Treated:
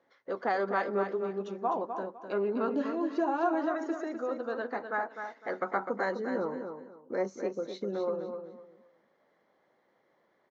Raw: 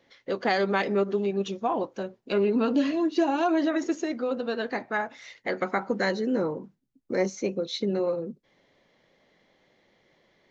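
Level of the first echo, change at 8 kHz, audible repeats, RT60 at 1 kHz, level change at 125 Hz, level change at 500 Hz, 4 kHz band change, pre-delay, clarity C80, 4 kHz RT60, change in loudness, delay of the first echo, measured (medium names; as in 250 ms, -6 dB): -7.5 dB, no reading, 3, no reverb, -10.0 dB, -4.5 dB, -15.0 dB, no reverb, no reverb, no reverb, -5.5 dB, 253 ms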